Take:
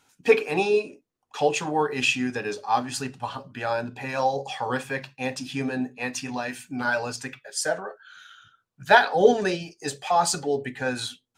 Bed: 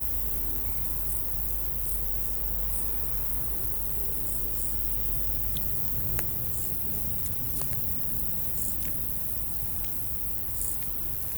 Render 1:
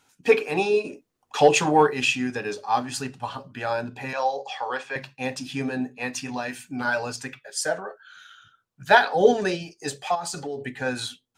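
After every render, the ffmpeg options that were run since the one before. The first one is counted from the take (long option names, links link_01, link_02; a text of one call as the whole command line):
ffmpeg -i in.wav -filter_complex "[0:a]asplit=3[link_01][link_02][link_03];[link_01]afade=type=out:start_time=0.84:duration=0.02[link_04];[link_02]acontrast=73,afade=type=in:start_time=0.84:duration=0.02,afade=type=out:start_time=1.89:duration=0.02[link_05];[link_03]afade=type=in:start_time=1.89:duration=0.02[link_06];[link_04][link_05][link_06]amix=inputs=3:normalize=0,asettb=1/sr,asplit=3[link_07][link_08][link_09];[link_07]atrim=end=4.134[link_10];[link_08]atrim=start=4.13:end=4.96,asetpts=PTS-STARTPTS,afade=type=in:duration=0.004:curve=qsin,afade=type=out:start_time=0.826:duration=0.004:curve=qsin,acrossover=split=380 6900:gain=0.0794 1 0.0631[link_11][link_12][link_13];[link_11][link_12][link_13]amix=inputs=3:normalize=0[link_14];[link_09]atrim=start=4.956[link_15];[link_10][link_14]acrossfade=duration=0.004:curve1=hsin:curve2=qsin[link_16];[link_16][link_15]acrossfade=duration=0.004:curve1=qsin:curve2=hsin,asplit=3[link_17][link_18][link_19];[link_17]afade=type=out:start_time=10.14:duration=0.02[link_20];[link_18]acompressor=threshold=-27dB:ratio=10:attack=3.2:release=140:knee=1:detection=peak,afade=type=in:start_time=10.14:duration=0.02,afade=type=out:start_time=10.64:duration=0.02[link_21];[link_19]afade=type=in:start_time=10.64:duration=0.02[link_22];[link_20][link_21][link_22]amix=inputs=3:normalize=0" out.wav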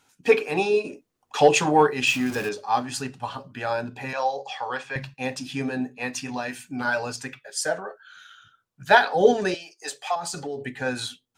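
ffmpeg -i in.wav -filter_complex "[0:a]asettb=1/sr,asplit=3[link_01][link_02][link_03];[link_01]atrim=end=2.074[link_04];[link_02]atrim=start=2.07:end=2.49,asetpts=PTS-STARTPTS,afade=type=in:duration=0.004:curve=qsin,afade=type=out:start_time=0.416:duration=0.004:curve=qsin,aeval=exprs='val(0)+0.5*0.0299*sgn(val(0))':channel_layout=same[link_05];[link_03]atrim=start=2.486[link_06];[link_04][link_05]acrossfade=duration=0.004:curve1=hsin:curve2=qsin[link_07];[link_07][link_06]acrossfade=duration=0.004:curve1=qsin:curve2=hsin,asettb=1/sr,asplit=3[link_08][link_09][link_10];[link_08]atrim=end=4.014[link_11];[link_09]atrim=start=4.01:end=5.14,asetpts=PTS-STARTPTS,afade=type=in:duration=0.004:curve=qsin,afade=type=out:start_time=1.126:duration=0.004:curve=qsin,asubboost=boost=10.5:cutoff=180[link_12];[link_10]atrim=start=5.136[link_13];[link_11][link_12]acrossfade=duration=0.004:curve1=hsin:curve2=qsin[link_14];[link_14][link_13]acrossfade=duration=0.004:curve1=qsin:curve2=hsin,asettb=1/sr,asplit=3[link_15][link_16][link_17];[link_15]atrim=end=9.544[link_18];[link_16]atrim=start=9.54:end=10.16,asetpts=PTS-STARTPTS,afade=type=in:duration=0.004:curve=qsin,afade=type=out:start_time=0.616:duration=0.004:curve=qsin,highpass=620[link_19];[link_17]atrim=start=10.156[link_20];[link_18][link_19]acrossfade=duration=0.004:curve1=hsin:curve2=qsin[link_21];[link_21][link_20]acrossfade=duration=0.004:curve1=qsin:curve2=hsin" out.wav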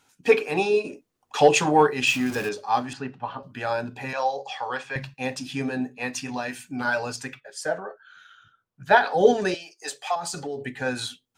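ffmpeg -i in.wav -filter_complex "[0:a]asettb=1/sr,asplit=3[link_01][link_02][link_03];[link_01]atrim=end=2.934[link_04];[link_02]atrim=start=2.93:end=3.43,asetpts=PTS-STARTPTS,afade=type=in:duration=0.004:curve=qsin,afade=type=out:start_time=0.496:duration=0.004:curve=qsin,highpass=120,lowpass=2300[link_05];[link_03]atrim=start=3.426[link_06];[link_04][link_05]acrossfade=duration=0.004:curve1=hsin:curve2=qsin[link_07];[link_07][link_06]acrossfade=duration=0.004:curve1=qsin:curve2=hsin,asettb=1/sr,asplit=3[link_08][link_09][link_10];[link_08]atrim=end=7.404[link_11];[link_09]atrim=start=7.4:end=9.05,asetpts=PTS-STARTPTS,afade=type=in:duration=0.004:curve=qsin,afade=type=out:start_time=1.646:duration=0.004:curve=qsin,highshelf=frequency=3000:gain=-10[link_12];[link_10]atrim=start=9.046[link_13];[link_11][link_12]acrossfade=duration=0.004:curve1=hsin:curve2=qsin[link_14];[link_14][link_13]acrossfade=duration=0.004:curve1=qsin:curve2=hsin" out.wav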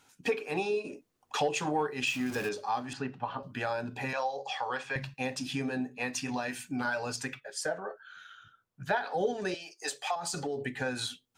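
ffmpeg -i in.wav -af "acompressor=threshold=-31dB:ratio=3" out.wav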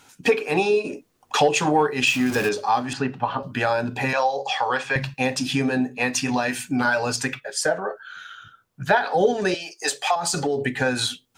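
ffmpeg -i in.wav -af "volume=11dB" out.wav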